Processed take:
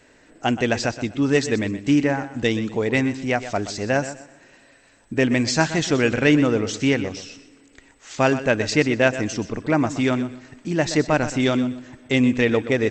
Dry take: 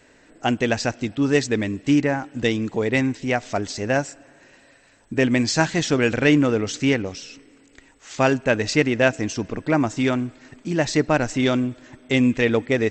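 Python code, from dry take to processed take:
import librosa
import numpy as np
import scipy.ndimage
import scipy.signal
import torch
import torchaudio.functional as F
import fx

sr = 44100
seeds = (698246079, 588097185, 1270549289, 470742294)

y = fx.echo_feedback(x, sr, ms=124, feedback_pct=24, wet_db=-13.0)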